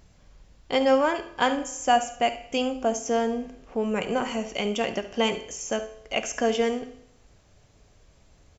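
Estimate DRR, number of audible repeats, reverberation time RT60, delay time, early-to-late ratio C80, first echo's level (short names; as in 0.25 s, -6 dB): 8.5 dB, 1, 0.75 s, 71 ms, 15.5 dB, -15.0 dB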